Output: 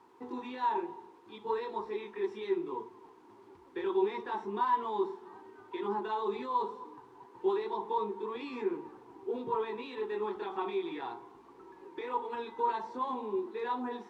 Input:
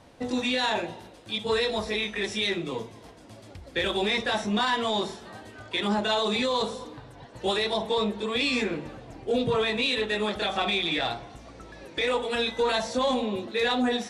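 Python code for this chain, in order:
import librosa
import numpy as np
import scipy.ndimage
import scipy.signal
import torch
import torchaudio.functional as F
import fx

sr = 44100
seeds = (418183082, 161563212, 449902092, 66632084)

y = fx.dmg_noise_colour(x, sr, seeds[0], colour='white', level_db=-49.0)
y = fx.double_bandpass(y, sr, hz=600.0, octaves=1.3)
y = y * librosa.db_to_amplitude(2.0)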